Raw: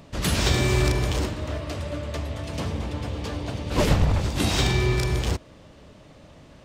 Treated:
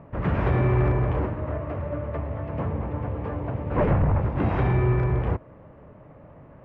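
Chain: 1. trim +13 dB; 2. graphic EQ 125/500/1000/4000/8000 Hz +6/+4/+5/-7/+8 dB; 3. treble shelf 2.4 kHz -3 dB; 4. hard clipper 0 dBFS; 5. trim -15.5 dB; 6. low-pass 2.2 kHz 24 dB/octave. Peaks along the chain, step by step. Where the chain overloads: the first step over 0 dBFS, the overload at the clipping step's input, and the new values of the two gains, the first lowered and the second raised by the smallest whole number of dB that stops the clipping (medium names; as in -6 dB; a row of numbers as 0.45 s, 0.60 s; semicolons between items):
+4.5 dBFS, +8.5 dBFS, +8.5 dBFS, 0.0 dBFS, -15.5 dBFS, -14.5 dBFS; step 1, 8.5 dB; step 1 +4 dB, step 5 -6.5 dB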